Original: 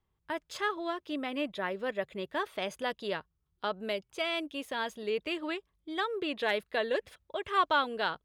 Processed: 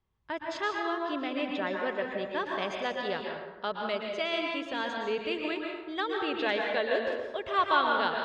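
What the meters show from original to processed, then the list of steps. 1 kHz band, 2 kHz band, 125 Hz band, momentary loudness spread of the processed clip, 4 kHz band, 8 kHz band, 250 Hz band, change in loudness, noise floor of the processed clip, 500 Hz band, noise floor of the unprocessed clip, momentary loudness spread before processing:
+3.0 dB, +3.0 dB, +1.5 dB, 8 LU, +1.5 dB, n/a, +2.5 dB, +2.5 dB, -48 dBFS, +2.5 dB, -79 dBFS, 9 LU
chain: LPF 6300 Hz 24 dB/oct; plate-style reverb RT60 1.2 s, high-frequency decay 0.55×, pre-delay 0.105 s, DRR 0.5 dB

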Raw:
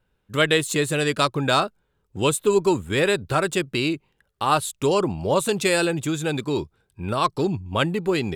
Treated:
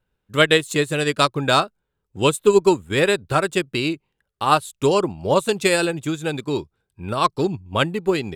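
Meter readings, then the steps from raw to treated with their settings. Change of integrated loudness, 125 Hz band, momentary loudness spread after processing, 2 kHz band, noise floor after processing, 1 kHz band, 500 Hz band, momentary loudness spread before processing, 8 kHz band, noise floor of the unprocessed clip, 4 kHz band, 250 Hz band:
+2.5 dB, +0.5 dB, 10 LU, +2.5 dB, -78 dBFS, +3.0 dB, +3.0 dB, 8 LU, -1.0 dB, -71 dBFS, +2.5 dB, +1.0 dB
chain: transient shaper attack +1 dB, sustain -3 dB; upward expander 1.5:1, over -31 dBFS; gain +4.5 dB

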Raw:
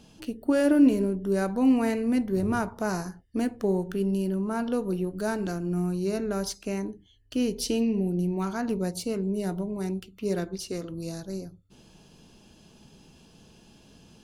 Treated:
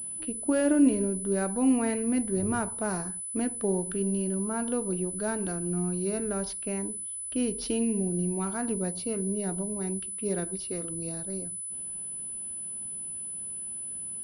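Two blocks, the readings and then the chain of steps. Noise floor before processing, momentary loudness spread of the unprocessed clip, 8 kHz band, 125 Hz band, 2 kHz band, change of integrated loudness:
-56 dBFS, 12 LU, +12.5 dB, -2.5 dB, -2.5 dB, -1.5 dB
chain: low-pass opened by the level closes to 2800 Hz, open at -23.5 dBFS; pulse-width modulation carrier 10000 Hz; gain -2.5 dB

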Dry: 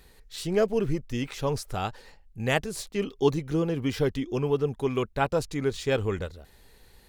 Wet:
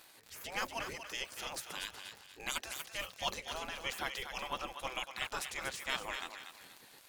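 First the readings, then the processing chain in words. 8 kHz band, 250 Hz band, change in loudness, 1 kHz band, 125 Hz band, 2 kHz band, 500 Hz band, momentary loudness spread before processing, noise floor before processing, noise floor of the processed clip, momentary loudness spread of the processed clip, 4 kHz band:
-2.0 dB, -24.0 dB, -11.5 dB, -7.0 dB, -26.5 dB, -3.5 dB, -20.5 dB, 8 LU, -57 dBFS, -60 dBFS, 10 LU, -1.0 dB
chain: spectral gate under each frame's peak -20 dB weak; on a send: thinning echo 0.239 s, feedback 37%, high-pass 790 Hz, level -7 dB; on the sum: crackle 59/s -42 dBFS; gain +2 dB

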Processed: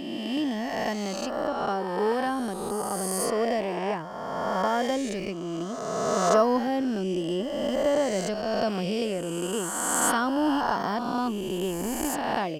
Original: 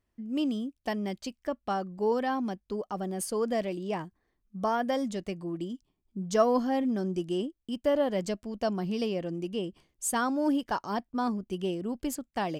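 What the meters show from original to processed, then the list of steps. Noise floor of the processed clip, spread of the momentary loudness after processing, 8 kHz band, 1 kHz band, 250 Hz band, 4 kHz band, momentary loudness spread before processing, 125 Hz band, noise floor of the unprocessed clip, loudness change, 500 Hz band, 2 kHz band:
-34 dBFS, 7 LU, +9.0 dB, +5.5 dB, +2.0 dB, +7.0 dB, 9 LU, +2.5 dB, -79 dBFS, +4.0 dB, +4.0 dB, +7.0 dB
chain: spectral swells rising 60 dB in 2.20 s

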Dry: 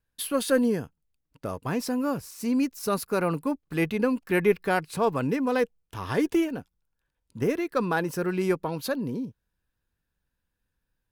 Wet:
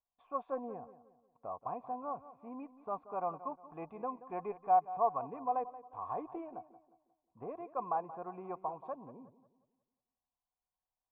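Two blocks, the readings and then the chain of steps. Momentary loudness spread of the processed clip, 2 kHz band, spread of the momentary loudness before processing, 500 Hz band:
15 LU, -27.5 dB, 9 LU, -14.0 dB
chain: vocal tract filter a; darkening echo 0.179 s, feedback 39%, low-pass 2700 Hz, level -15 dB; gain +4 dB

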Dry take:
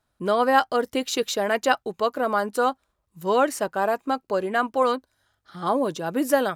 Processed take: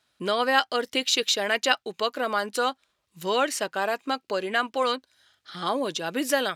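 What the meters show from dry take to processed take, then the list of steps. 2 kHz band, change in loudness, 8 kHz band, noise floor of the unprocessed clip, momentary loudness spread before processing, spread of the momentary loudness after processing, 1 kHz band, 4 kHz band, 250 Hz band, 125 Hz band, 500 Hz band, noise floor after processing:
+1.5 dB, -2.0 dB, +3.0 dB, -75 dBFS, 6 LU, 7 LU, -4.0 dB, +7.0 dB, -5.0 dB, -5.5 dB, -4.5 dB, -76 dBFS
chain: weighting filter D; in parallel at +1.5 dB: compressor, threshold -32 dBFS, peak gain reduction 19.5 dB; on the sum: gain -6 dB

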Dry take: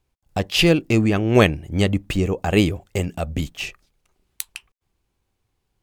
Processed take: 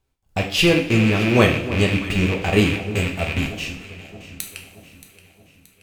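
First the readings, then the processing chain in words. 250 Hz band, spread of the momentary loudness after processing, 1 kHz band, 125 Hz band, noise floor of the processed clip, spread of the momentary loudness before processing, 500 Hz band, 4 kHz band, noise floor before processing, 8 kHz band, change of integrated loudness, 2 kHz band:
+0.5 dB, 18 LU, +1.0 dB, +1.0 dB, -61 dBFS, 15 LU, 0.0 dB, +1.0 dB, -75 dBFS, +0.5 dB, +1.0 dB, +4.0 dB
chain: rattling part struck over -28 dBFS, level -13 dBFS; echo with dull and thin repeats by turns 0.313 s, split 1100 Hz, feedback 69%, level -13 dB; two-slope reverb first 0.51 s, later 4.3 s, from -22 dB, DRR 1.5 dB; gain -2 dB

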